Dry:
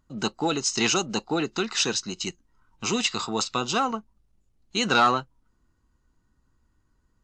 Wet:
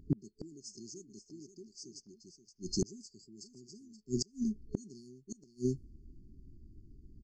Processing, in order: level-controlled noise filter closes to 2 kHz, open at -21.5 dBFS; on a send: delay 526 ms -11.5 dB; on the sum: FFT band-reject 430–4300 Hz; inverted gate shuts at -32 dBFS, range -36 dB; trim +13.5 dB

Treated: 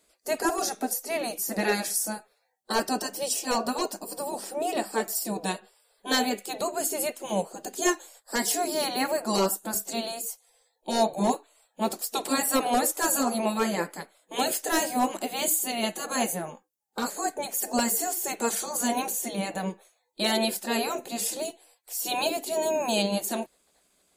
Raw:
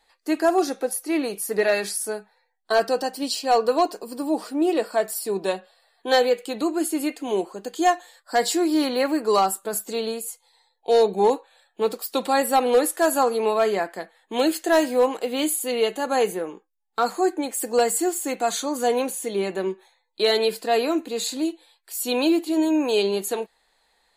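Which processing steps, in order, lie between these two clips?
spectral gate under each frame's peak -10 dB weak; high-order bell 2.1 kHz -8.5 dB 2.5 oct; trim +7 dB

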